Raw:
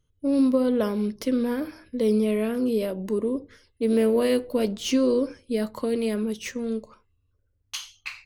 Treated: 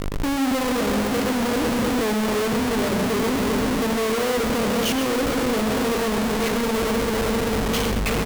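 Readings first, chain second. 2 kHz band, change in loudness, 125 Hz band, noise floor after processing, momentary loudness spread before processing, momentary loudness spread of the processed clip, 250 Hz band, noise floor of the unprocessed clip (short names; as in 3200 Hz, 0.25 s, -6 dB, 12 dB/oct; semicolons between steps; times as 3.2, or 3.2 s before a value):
+12.5 dB, +3.0 dB, n/a, -23 dBFS, 12 LU, 1 LU, +2.0 dB, -70 dBFS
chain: regenerating reverse delay 0.195 s, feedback 79%, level -9 dB; high shelf 2500 Hz -10 dB; buzz 50 Hz, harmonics 15, -49 dBFS -6 dB/oct; in parallel at -0.5 dB: compressor, threshold -31 dBFS, peak gain reduction 13.5 dB; on the sum: Schmitt trigger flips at -37.5 dBFS; tapped delay 0.102/0.127 s -15.5/-9.5 dB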